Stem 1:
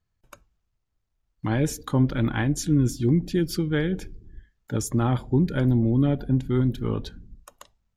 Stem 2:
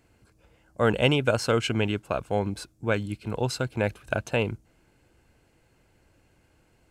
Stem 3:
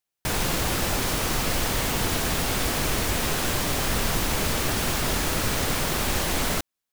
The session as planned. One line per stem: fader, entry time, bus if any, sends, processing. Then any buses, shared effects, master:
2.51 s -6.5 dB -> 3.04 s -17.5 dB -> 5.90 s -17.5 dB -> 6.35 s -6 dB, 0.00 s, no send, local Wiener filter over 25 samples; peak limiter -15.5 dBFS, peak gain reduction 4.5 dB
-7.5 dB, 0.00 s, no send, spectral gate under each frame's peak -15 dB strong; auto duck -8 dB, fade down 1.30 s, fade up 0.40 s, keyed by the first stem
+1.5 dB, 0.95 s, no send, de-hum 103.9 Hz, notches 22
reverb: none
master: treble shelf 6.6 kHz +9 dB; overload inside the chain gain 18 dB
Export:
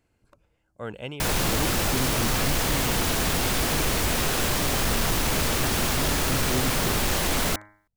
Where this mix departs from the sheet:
stem 2: missing spectral gate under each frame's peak -15 dB strong; master: missing treble shelf 6.6 kHz +9 dB

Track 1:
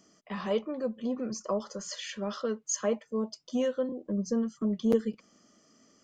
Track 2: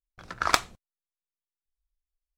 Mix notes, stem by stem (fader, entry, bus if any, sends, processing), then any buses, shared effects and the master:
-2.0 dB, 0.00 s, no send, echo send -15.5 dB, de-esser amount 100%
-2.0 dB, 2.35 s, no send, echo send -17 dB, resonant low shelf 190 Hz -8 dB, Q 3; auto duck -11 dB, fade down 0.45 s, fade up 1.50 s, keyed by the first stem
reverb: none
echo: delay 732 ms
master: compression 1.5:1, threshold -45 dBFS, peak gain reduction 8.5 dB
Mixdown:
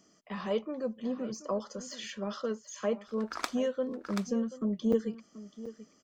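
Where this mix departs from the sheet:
stem 2: entry 2.35 s -> 2.90 s; master: missing compression 1.5:1, threshold -45 dBFS, peak gain reduction 8.5 dB

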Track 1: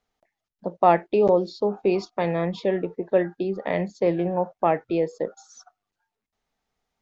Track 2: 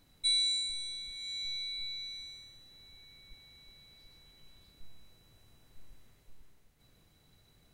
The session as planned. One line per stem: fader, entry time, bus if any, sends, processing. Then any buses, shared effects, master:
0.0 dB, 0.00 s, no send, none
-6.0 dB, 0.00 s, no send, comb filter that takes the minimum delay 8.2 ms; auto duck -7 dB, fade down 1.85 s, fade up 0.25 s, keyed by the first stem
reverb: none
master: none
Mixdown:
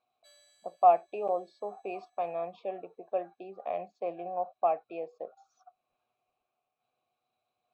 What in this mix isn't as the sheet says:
stem 2 -6.0 dB -> +1.0 dB; master: extra vowel filter a

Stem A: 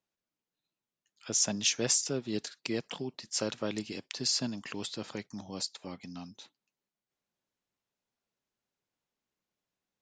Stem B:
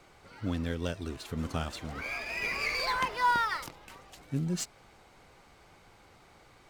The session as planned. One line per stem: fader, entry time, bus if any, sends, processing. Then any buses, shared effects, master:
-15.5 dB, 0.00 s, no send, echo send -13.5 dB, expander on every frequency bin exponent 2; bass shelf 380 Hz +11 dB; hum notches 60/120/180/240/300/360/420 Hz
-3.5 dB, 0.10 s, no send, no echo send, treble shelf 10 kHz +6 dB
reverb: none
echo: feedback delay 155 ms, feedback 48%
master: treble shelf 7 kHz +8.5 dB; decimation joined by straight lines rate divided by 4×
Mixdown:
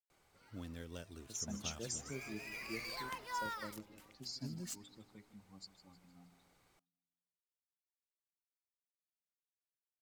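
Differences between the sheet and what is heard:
stem B -3.5 dB -> -15.0 dB; master: missing decimation joined by straight lines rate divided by 4×

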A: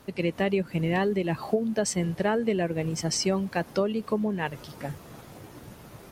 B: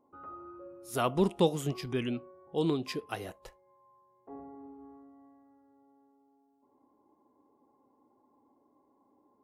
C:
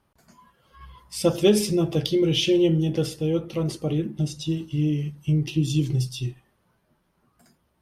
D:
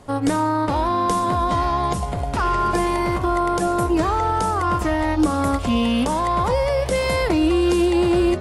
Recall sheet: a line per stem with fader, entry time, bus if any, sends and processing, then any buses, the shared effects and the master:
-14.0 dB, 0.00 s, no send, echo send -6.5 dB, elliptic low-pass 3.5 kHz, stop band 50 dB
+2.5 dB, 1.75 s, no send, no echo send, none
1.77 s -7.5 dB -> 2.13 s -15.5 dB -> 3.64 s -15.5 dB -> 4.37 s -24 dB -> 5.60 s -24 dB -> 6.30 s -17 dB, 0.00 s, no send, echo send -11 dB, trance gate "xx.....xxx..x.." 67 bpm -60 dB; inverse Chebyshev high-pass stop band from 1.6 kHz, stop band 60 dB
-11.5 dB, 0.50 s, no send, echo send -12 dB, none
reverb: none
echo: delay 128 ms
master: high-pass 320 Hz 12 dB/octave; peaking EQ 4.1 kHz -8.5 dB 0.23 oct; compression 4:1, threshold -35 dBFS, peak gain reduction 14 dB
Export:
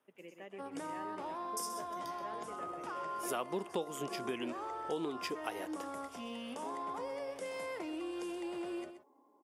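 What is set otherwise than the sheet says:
stem A -14.0 dB -> -22.0 dB; stem B: entry 1.75 s -> 2.35 s; stem D -11.5 dB -> -20.0 dB

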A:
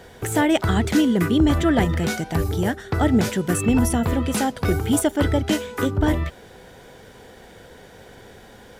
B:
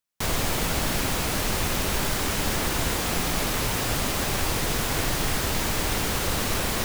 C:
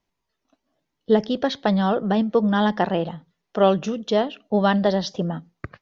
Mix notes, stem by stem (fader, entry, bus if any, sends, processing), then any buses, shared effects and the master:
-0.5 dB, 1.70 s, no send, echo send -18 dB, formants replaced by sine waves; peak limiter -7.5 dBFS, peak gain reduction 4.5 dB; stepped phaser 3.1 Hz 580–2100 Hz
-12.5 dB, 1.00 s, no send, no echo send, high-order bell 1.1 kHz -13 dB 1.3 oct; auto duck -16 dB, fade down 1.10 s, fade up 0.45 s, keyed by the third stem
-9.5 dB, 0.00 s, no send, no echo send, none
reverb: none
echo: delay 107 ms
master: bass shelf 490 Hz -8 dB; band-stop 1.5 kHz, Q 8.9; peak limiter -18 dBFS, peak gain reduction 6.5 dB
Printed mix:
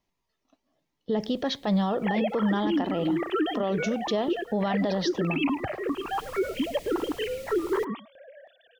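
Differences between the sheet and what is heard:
stem B -12.5 dB -> -19.5 dB; stem C -9.5 dB -> -1.0 dB; master: missing bass shelf 490 Hz -8 dB

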